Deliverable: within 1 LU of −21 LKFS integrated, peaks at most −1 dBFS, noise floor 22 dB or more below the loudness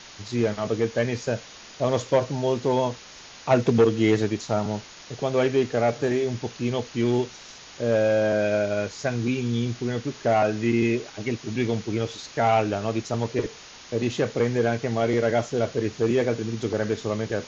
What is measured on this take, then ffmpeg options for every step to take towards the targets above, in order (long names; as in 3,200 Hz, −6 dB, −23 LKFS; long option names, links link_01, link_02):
background noise floor −45 dBFS; target noise floor −47 dBFS; integrated loudness −25.0 LKFS; sample peak −7.5 dBFS; target loudness −21.0 LKFS
→ -af "afftdn=noise_reduction=6:noise_floor=-45"
-af "volume=4dB"